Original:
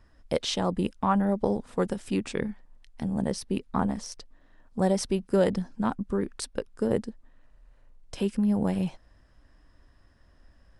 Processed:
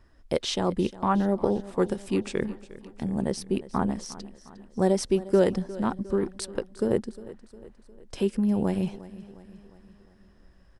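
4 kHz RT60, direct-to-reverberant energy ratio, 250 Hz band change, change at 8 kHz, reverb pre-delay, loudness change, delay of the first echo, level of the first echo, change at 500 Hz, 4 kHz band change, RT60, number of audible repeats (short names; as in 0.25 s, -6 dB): none, none, +1.0 dB, 0.0 dB, none, +1.5 dB, 0.356 s, -17.5 dB, +2.5 dB, 0.0 dB, none, 4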